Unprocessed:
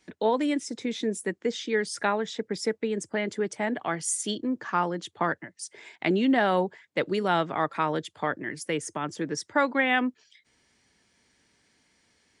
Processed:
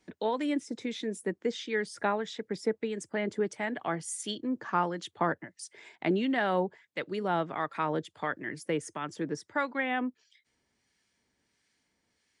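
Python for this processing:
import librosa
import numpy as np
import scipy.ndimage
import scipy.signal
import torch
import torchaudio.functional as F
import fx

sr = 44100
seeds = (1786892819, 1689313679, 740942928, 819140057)

y = fx.harmonic_tremolo(x, sr, hz=1.5, depth_pct=50, crossover_hz=1200.0)
y = fx.dynamic_eq(y, sr, hz=6900.0, q=0.7, threshold_db=-47.0, ratio=4.0, max_db=-5)
y = fx.rider(y, sr, range_db=10, speed_s=2.0)
y = y * librosa.db_to_amplitude(-2.5)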